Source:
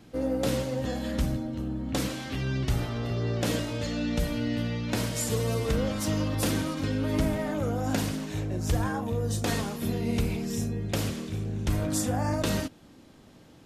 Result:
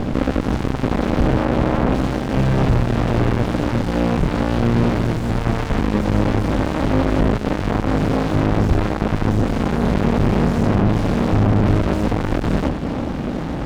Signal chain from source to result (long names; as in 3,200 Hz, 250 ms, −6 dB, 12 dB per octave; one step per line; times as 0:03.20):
sub-octave generator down 2 octaves, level +1 dB
low-shelf EQ 290 Hz +8.5 dB
mid-hump overdrive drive 46 dB, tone 1,100 Hz, clips at −6 dBFS
high-frequency loss of the air 61 metres
windowed peak hold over 65 samples